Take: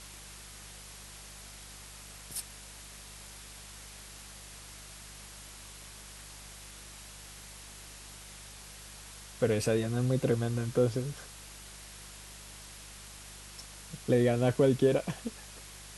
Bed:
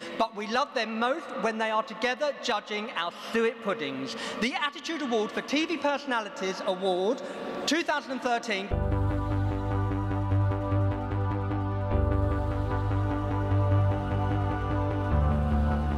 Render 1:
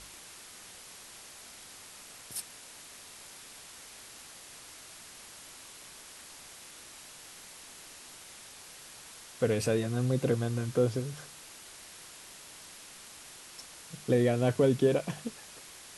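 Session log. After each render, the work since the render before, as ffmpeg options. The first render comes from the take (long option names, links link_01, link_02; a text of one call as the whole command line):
ffmpeg -i in.wav -af "bandreject=frequency=50:width_type=h:width=4,bandreject=frequency=100:width_type=h:width=4,bandreject=frequency=150:width_type=h:width=4,bandreject=frequency=200:width_type=h:width=4" out.wav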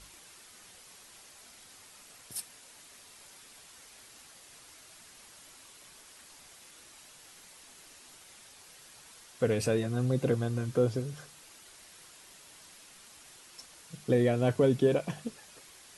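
ffmpeg -i in.wav -af "afftdn=noise_reduction=6:noise_floor=-50" out.wav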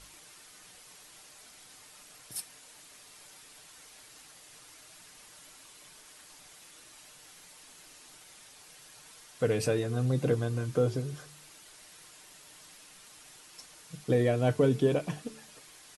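ffmpeg -i in.wav -af "aecho=1:1:6.6:0.32,bandreject=frequency=73.93:width_type=h:width=4,bandreject=frequency=147.86:width_type=h:width=4,bandreject=frequency=221.79:width_type=h:width=4,bandreject=frequency=295.72:width_type=h:width=4,bandreject=frequency=369.65:width_type=h:width=4,bandreject=frequency=443.58:width_type=h:width=4" out.wav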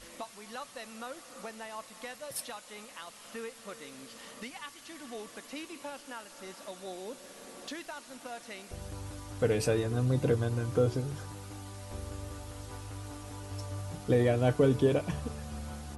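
ffmpeg -i in.wav -i bed.wav -filter_complex "[1:a]volume=-15.5dB[link_01];[0:a][link_01]amix=inputs=2:normalize=0" out.wav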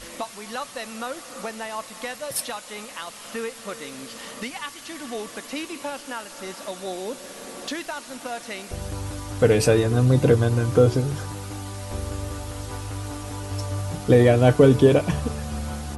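ffmpeg -i in.wav -af "volume=10.5dB" out.wav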